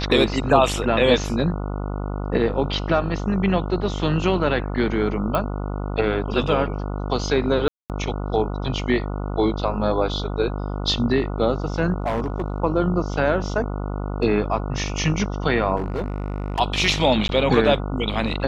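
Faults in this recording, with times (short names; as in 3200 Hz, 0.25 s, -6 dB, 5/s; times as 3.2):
buzz 50 Hz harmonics 29 -27 dBFS
5.35 pop -10 dBFS
7.68–7.9 gap 0.218 s
12–12.6 clipped -19 dBFS
15.76–16.6 clipped -21 dBFS
17.28–17.29 gap 11 ms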